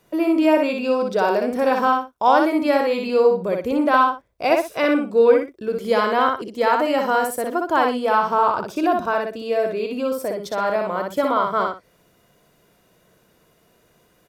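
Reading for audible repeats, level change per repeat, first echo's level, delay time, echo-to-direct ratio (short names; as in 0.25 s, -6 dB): 2, -13.0 dB, -3.5 dB, 61 ms, -3.5 dB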